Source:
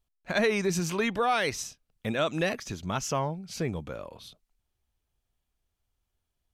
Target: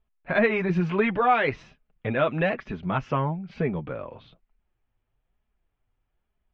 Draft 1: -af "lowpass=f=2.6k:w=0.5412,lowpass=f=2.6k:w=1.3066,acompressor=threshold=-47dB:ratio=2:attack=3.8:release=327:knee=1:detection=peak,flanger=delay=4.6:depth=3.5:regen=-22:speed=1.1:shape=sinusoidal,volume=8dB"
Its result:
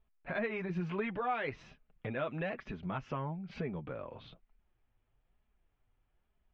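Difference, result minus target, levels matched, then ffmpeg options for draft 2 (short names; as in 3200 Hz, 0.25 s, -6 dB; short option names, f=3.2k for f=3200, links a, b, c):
compressor: peak gain reduction +14.5 dB
-af "lowpass=f=2.6k:w=0.5412,lowpass=f=2.6k:w=1.3066,flanger=delay=4.6:depth=3.5:regen=-22:speed=1.1:shape=sinusoidal,volume=8dB"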